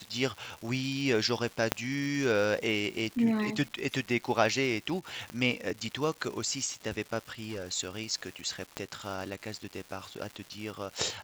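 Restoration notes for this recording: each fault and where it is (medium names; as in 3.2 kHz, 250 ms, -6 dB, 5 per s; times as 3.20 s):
crackle 420 per s -39 dBFS
1.72 s: pop -8 dBFS
5.30 s: pop -25 dBFS
7.31–7.67 s: clipped -32.5 dBFS
8.77 s: pop -18 dBFS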